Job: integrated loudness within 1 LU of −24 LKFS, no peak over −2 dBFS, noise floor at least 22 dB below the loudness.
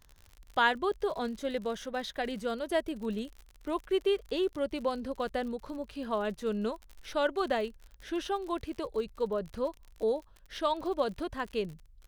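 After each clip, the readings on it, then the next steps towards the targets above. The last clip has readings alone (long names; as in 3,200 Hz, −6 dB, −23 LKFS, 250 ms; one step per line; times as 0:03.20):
crackle rate 54 per second; integrated loudness −33.5 LKFS; sample peak −12.5 dBFS; target loudness −24.0 LKFS
→ click removal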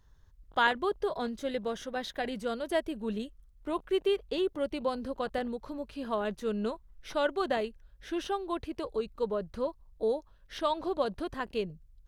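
crackle rate 0.66 per second; integrated loudness −33.5 LKFS; sample peak −12.5 dBFS; target loudness −24.0 LKFS
→ level +9.5 dB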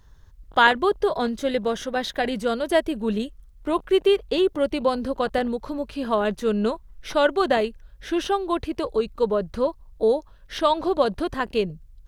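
integrated loudness −24.0 LKFS; sample peak −3.0 dBFS; background noise floor −50 dBFS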